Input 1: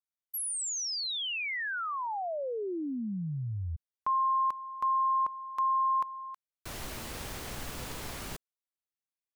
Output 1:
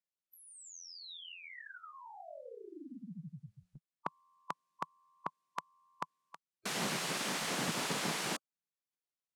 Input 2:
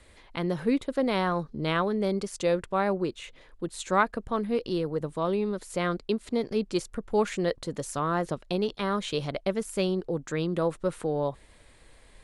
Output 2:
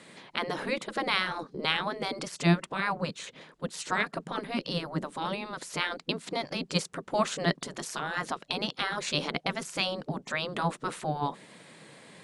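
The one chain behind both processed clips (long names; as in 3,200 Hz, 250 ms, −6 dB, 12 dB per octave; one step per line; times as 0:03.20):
gate on every frequency bin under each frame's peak −10 dB weak
low-pass filter 9,200 Hz 12 dB per octave
low shelf with overshoot 110 Hz −13 dB, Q 3
level +7 dB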